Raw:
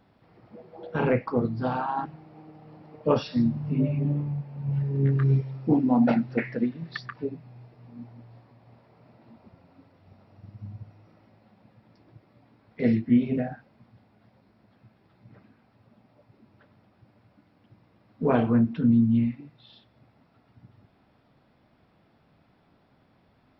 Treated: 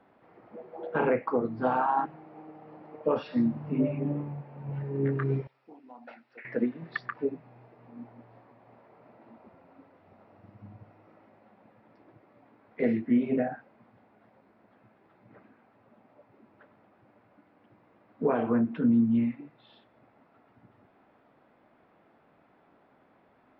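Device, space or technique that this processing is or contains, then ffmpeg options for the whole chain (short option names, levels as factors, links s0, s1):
DJ mixer with the lows and highs turned down: -filter_complex "[0:a]acrossover=split=250 2600:gain=0.178 1 0.1[s0][s1][s2];[s0][s1][s2]amix=inputs=3:normalize=0,alimiter=limit=0.106:level=0:latency=1:release=200,asettb=1/sr,asplit=3[s3][s4][s5];[s3]atrim=end=5.474[s6];[s4]atrim=start=5.47:end=6.45,asetpts=PTS-STARTPTS,afade=t=in:d=0.004:c=qsin,afade=t=out:st=0.976:d=0.004:c=qsin,aderivative[s7];[s5]atrim=start=6.446[s8];[s6][s7]acrossfade=d=0.004:c1=hsin:c2=qsin[s9];[s9][s8]acrossfade=d=0.004:c1=qsin:c2=hsin,volume=1.5"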